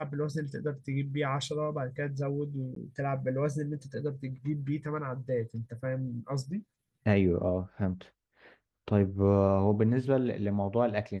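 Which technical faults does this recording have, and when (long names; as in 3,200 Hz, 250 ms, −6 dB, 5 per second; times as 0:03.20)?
0:02.75–0:02.76: drop-out 13 ms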